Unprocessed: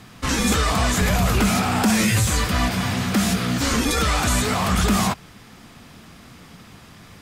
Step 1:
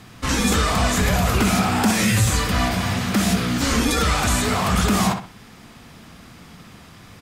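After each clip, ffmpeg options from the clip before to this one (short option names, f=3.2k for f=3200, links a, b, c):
-filter_complex "[0:a]asplit=2[a][b];[b]adelay=62,lowpass=f=3.5k:p=1,volume=-7dB,asplit=2[c][d];[d]adelay=62,lowpass=f=3.5k:p=1,volume=0.3,asplit=2[e][f];[f]adelay=62,lowpass=f=3.5k:p=1,volume=0.3,asplit=2[g][h];[h]adelay=62,lowpass=f=3.5k:p=1,volume=0.3[i];[a][c][e][g][i]amix=inputs=5:normalize=0"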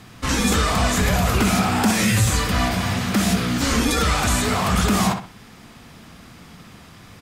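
-af anull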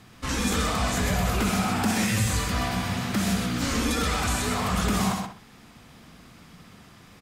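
-af "aecho=1:1:128:0.531,volume=-7dB"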